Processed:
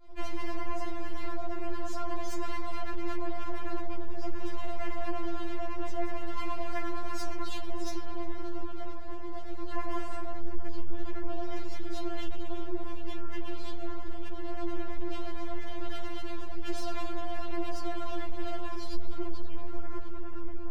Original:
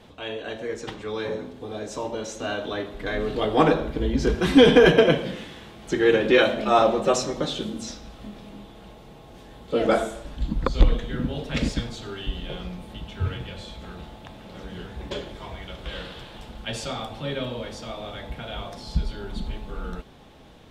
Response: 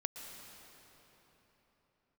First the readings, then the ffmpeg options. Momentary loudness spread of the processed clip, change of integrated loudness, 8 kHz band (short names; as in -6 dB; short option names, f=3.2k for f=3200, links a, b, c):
6 LU, -15.5 dB, -12.5 dB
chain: -filter_complex "[0:a]lowpass=5.6k,acompressor=threshold=-26dB:ratio=1.5,agate=range=-33dB:threshold=-37dB:ratio=3:detection=peak,aeval=exprs='(tanh(4.47*val(0)+0.25)-tanh(0.25))/4.47':c=same,lowshelf=f=300:g=9.5,asplit=2[a][b];[1:a]atrim=start_sample=2205,lowpass=f=2.9k:w=0.5412,lowpass=f=2.9k:w=1.3066[c];[b][c]afir=irnorm=-1:irlink=0,volume=-5dB[d];[a][d]amix=inputs=2:normalize=0,alimiter=level_in=11dB:limit=-24dB:level=0:latency=1:release=212,volume=-11dB,aeval=exprs='abs(val(0))':c=same,acrossover=split=510[e][f];[e]aeval=exprs='val(0)*(1-0.5/2+0.5/2*cos(2*PI*8.8*n/s))':c=same[g];[f]aeval=exprs='val(0)*(1-0.5/2-0.5/2*cos(2*PI*8.8*n/s))':c=same[h];[g][h]amix=inputs=2:normalize=0,bandreject=f=3.6k:w=8.1,afftfilt=real='re*4*eq(mod(b,16),0)':imag='im*4*eq(mod(b,16),0)':win_size=2048:overlap=0.75,volume=14dB"